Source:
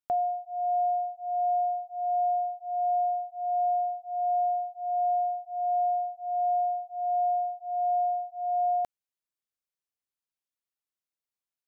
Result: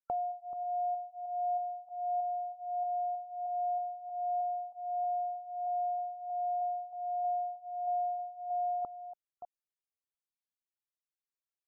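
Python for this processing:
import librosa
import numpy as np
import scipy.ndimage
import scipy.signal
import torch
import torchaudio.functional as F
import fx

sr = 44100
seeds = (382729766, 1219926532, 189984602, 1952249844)

y = fx.reverse_delay(x, sr, ms=315, wet_db=-13.0)
y = fx.spec_topn(y, sr, count=64)
y = fx.dynamic_eq(y, sr, hz=650.0, q=2.2, threshold_db=-41.0, ratio=4.0, max_db=-6)
y = y * librosa.db_to_amplitude(-2.0)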